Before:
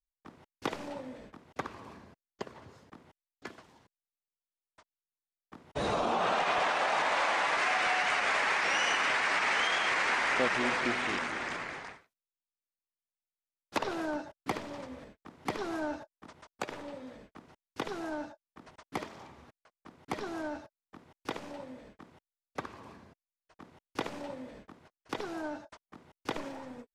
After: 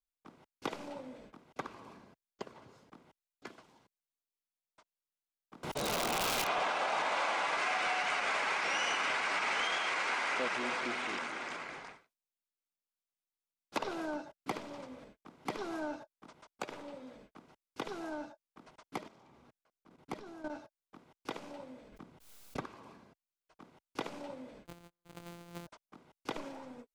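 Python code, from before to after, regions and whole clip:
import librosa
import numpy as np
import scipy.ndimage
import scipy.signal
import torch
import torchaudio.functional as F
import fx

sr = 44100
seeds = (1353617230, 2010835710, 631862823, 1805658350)

y = fx.chain(x, sr, fx.high_shelf(hz=3600.0, db=5.0),
    fx.overflow_wrap(gain_db=23.0),
    fx.pre_swell(db_per_s=35.0), at=(5.63, 6.47))
y = fx.chain(y, sr, fx.low_shelf(hz=150.0, db=-9.0),
    fx.transformer_sat(knee_hz=1200.0), at=(9.77, 11.69))
y = fx.chain(y, sr, fx.level_steps(step_db=12),
    fx.low_shelf(hz=460.0, db=5.0), at=(18.98, 20.5))
y = fx.chain(y, sr, fx.low_shelf(hz=230.0, db=10.0),
    fx.pre_swell(db_per_s=70.0), at=(21.92, 22.65))
y = fx.chain(y, sr, fx.sample_sort(block=256),
    fx.over_compress(threshold_db=-43.0, ratio=-0.5),
    fx.resample_bad(factor=8, down='none', up='hold'), at=(24.65, 25.67))
y = fx.peak_eq(y, sr, hz=80.0, db=-11.0, octaves=0.68)
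y = fx.notch(y, sr, hz=1800.0, q=10.0)
y = y * librosa.db_to_amplitude(-3.5)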